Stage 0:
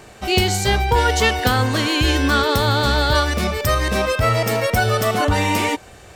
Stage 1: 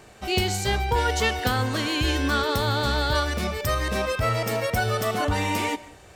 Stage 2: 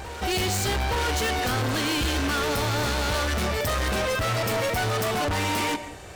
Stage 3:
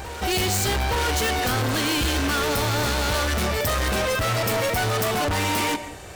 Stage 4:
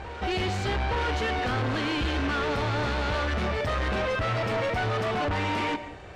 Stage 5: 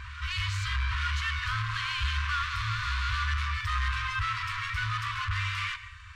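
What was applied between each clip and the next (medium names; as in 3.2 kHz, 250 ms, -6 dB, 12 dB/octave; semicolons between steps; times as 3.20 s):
reverberation RT60 0.55 s, pre-delay 95 ms, DRR 19.5 dB; trim -6.5 dB
overload inside the chain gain 31 dB; reverse echo 869 ms -12.5 dB; trim +7 dB
treble shelf 10 kHz +5.5 dB; trim +2 dB
low-pass 3 kHz 12 dB/octave; trim -3.5 dB
FFT band-reject 110–960 Hz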